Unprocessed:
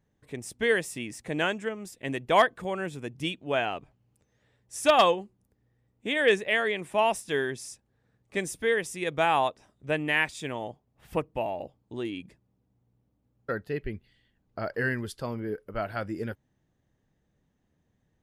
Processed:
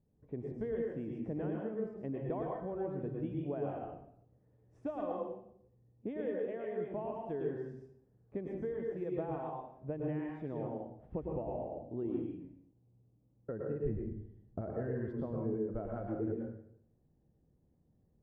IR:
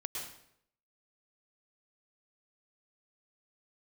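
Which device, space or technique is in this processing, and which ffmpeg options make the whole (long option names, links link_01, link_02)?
television next door: -filter_complex "[0:a]asettb=1/sr,asplit=3[link_01][link_02][link_03];[link_01]atrim=end=13.894[link_04];[link_02]atrim=start=13.89:end=14.61,asetpts=PTS-STARTPTS,afade=type=in:duration=0.004:curve=qsin,afade=type=out:start_time=0.716:duration=0.004:curve=qsin,lowshelf=frequency=300:gain=9.5[link_05];[link_03]atrim=start=14.606[link_06];[link_04][link_05]acrossfade=duration=0.004:curve1=hsin:curve2=qsin[link_07];[link_07][link_06]acrossfade=duration=0.004:curve1=qsin:curve2=hsin,acompressor=threshold=-32dB:ratio=6,lowpass=550[link_08];[1:a]atrim=start_sample=2205[link_09];[link_08][link_09]afir=irnorm=-1:irlink=0,volume=1.5dB"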